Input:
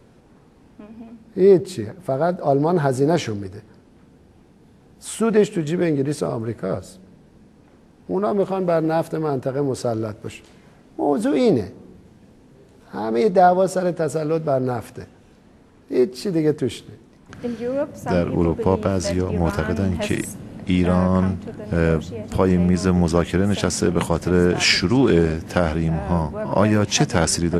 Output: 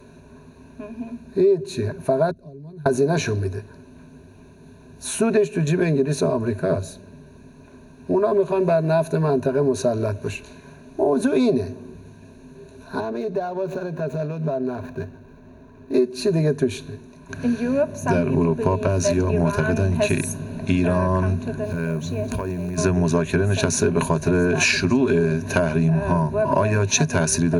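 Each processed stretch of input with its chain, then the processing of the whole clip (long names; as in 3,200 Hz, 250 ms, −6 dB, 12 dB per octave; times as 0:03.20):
0:02.31–0:02.86: guitar amp tone stack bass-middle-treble 10-0-1 + downward compressor 4 to 1, threshold −41 dBFS
0:13.00–0:15.94: running median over 15 samples + parametric band 9,800 Hz −7 dB 1.2 octaves + downward compressor 5 to 1, threshold −28 dBFS
0:21.64–0:22.78: downward compressor, threshold −26 dBFS + floating-point word with a short mantissa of 4 bits
whole clip: EQ curve with evenly spaced ripples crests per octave 1.5, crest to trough 15 dB; downward compressor, threshold −18 dBFS; level +2.5 dB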